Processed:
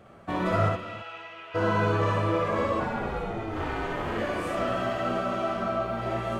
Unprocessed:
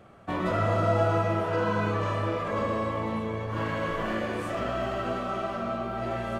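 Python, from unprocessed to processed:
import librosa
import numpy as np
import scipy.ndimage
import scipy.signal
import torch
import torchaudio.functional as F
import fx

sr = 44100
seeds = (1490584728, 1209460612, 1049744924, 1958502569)

y = fx.bandpass_q(x, sr, hz=2700.0, q=3.2, at=(0.68, 1.54), fade=0.02)
y = fx.ring_mod(y, sr, carrier_hz=fx.line((2.79, 370.0), (4.17, 120.0)), at=(2.79, 4.17), fade=0.02)
y = fx.echo_multitap(y, sr, ms=(58, 70, 277, 331), db=(-5.5, -5.5, -15.5, -15.5))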